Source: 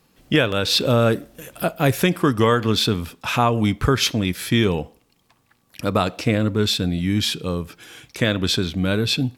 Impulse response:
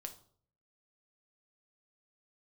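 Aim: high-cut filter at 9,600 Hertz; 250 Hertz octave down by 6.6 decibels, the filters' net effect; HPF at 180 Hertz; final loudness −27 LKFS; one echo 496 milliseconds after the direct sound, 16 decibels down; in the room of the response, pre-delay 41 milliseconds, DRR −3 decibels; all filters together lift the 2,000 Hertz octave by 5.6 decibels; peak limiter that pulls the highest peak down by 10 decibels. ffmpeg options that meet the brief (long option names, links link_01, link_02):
-filter_complex "[0:a]highpass=180,lowpass=9600,equalizer=frequency=250:width_type=o:gain=-7,equalizer=frequency=2000:width_type=o:gain=7.5,alimiter=limit=-12dB:level=0:latency=1,aecho=1:1:496:0.158,asplit=2[link_01][link_02];[1:a]atrim=start_sample=2205,adelay=41[link_03];[link_02][link_03]afir=irnorm=-1:irlink=0,volume=7dB[link_04];[link_01][link_04]amix=inputs=2:normalize=0,volume=-7.5dB"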